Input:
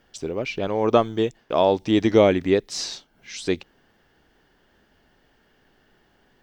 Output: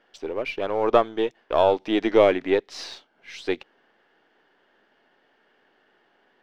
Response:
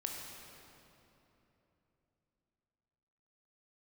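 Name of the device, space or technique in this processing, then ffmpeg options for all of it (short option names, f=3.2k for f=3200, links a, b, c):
crystal radio: -af "highpass=360,lowpass=3.2k,aeval=exprs='if(lt(val(0),0),0.708*val(0),val(0))':c=same,volume=2dB"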